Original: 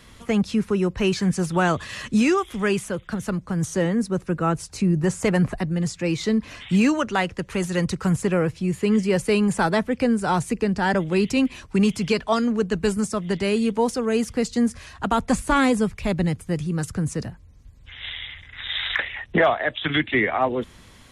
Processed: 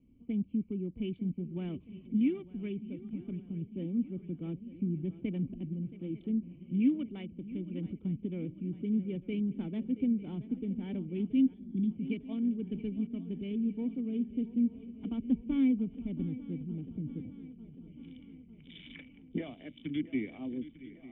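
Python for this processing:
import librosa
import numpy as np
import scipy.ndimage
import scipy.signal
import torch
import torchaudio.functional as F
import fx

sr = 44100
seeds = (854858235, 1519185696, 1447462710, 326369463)

y = fx.wiener(x, sr, points=25)
y = fx.formant_cascade(y, sr, vowel='i')
y = fx.echo_swing(y, sr, ms=899, ratio=3, feedback_pct=59, wet_db=-16)
y = fx.spec_box(y, sr, start_s=11.54, length_s=0.37, low_hz=370.0, high_hz=3200.0, gain_db=-13)
y = y * librosa.db_to_amplitude(-4.5)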